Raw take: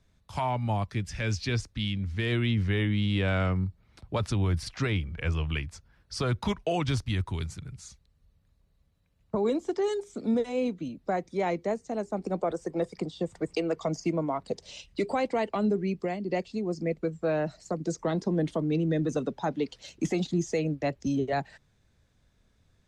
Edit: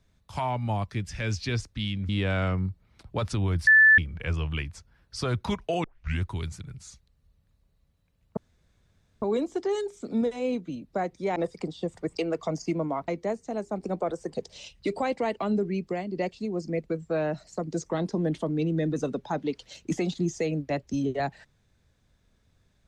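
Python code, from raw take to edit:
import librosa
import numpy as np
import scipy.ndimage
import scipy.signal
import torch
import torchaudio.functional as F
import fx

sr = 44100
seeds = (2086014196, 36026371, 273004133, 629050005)

y = fx.edit(x, sr, fx.cut(start_s=2.09, length_s=0.98),
    fx.bleep(start_s=4.65, length_s=0.31, hz=1750.0, db=-12.5),
    fx.tape_start(start_s=6.82, length_s=0.38),
    fx.insert_room_tone(at_s=9.35, length_s=0.85),
    fx.move(start_s=11.49, length_s=1.25, to_s=14.46), tone=tone)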